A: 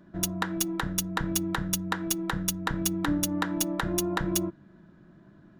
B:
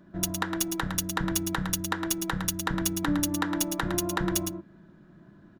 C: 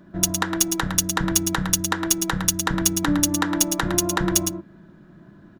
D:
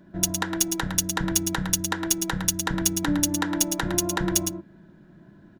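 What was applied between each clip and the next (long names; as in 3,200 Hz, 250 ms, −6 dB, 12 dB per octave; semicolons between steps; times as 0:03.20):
single-tap delay 110 ms −7 dB
dynamic equaliser 6,700 Hz, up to +6 dB, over −42 dBFS, Q 1.1; level +5.5 dB
notch filter 1,200 Hz, Q 5.6; level −3 dB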